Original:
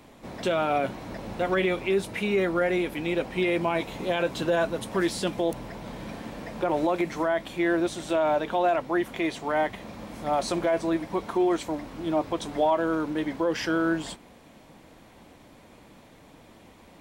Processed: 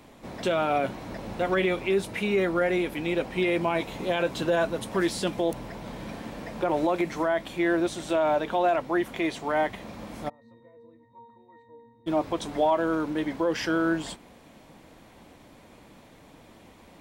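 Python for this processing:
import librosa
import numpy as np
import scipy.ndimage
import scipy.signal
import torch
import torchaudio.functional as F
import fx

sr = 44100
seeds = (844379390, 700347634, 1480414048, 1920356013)

y = fx.octave_resonator(x, sr, note='A#', decay_s=0.71, at=(10.28, 12.06), fade=0.02)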